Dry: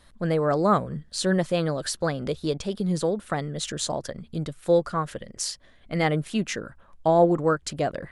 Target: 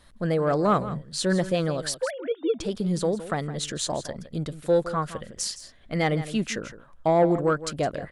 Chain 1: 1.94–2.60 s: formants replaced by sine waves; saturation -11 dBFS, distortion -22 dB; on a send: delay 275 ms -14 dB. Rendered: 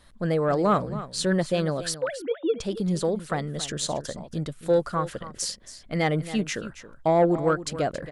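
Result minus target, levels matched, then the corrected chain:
echo 112 ms late
1.94–2.60 s: formants replaced by sine waves; saturation -11 dBFS, distortion -22 dB; on a send: delay 163 ms -14 dB

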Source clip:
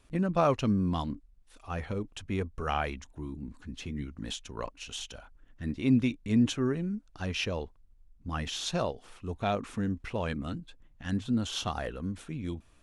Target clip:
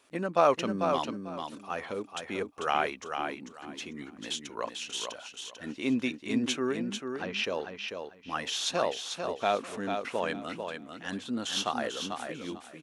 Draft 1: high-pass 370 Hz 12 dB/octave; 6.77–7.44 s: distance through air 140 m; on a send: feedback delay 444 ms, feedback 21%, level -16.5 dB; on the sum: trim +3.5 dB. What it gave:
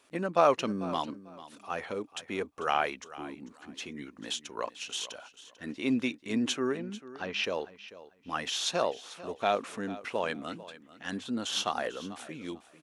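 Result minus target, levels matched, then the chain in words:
echo-to-direct -10.5 dB
high-pass 370 Hz 12 dB/octave; 6.77–7.44 s: distance through air 140 m; on a send: feedback delay 444 ms, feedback 21%, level -6 dB; on the sum: trim +3.5 dB

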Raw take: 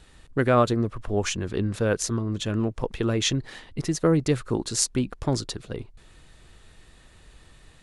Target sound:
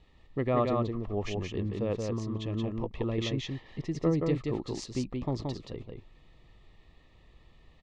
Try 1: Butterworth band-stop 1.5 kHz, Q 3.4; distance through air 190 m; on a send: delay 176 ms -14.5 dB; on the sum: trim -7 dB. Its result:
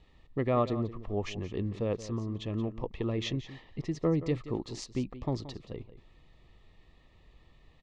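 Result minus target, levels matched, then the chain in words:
echo-to-direct -11 dB
Butterworth band-stop 1.5 kHz, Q 3.4; distance through air 190 m; on a send: delay 176 ms -3.5 dB; on the sum: trim -7 dB

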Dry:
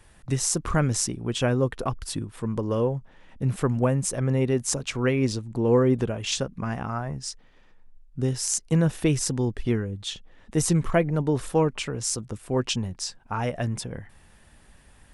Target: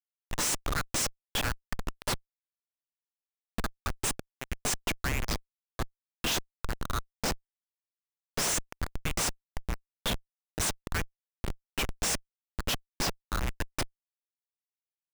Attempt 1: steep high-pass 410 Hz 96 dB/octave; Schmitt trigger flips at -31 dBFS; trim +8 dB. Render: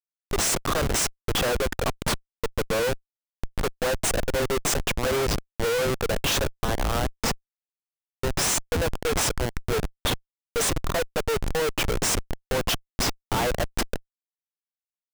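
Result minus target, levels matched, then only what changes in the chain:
500 Hz band +8.5 dB
change: steep high-pass 1.2 kHz 96 dB/octave

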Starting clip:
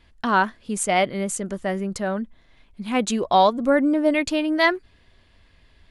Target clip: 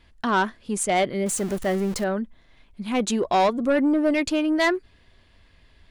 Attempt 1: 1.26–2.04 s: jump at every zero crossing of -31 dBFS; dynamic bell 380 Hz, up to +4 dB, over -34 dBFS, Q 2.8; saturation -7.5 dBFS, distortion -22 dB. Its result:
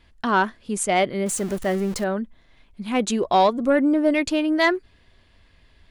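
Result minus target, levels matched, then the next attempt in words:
saturation: distortion -9 dB
1.26–2.04 s: jump at every zero crossing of -31 dBFS; dynamic bell 380 Hz, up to +4 dB, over -34 dBFS, Q 2.8; saturation -14 dBFS, distortion -14 dB

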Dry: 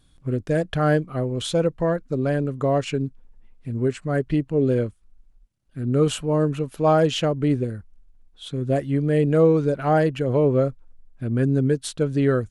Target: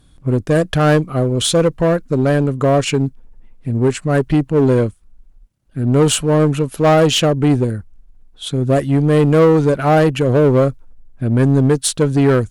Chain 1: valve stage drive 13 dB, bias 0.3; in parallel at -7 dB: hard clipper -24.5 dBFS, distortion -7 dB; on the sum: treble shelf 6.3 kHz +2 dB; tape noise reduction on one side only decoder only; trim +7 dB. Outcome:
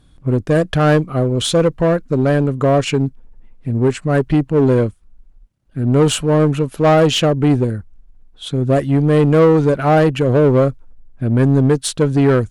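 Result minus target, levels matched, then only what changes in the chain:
8 kHz band -4.0 dB
change: treble shelf 6.3 kHz +9 dB

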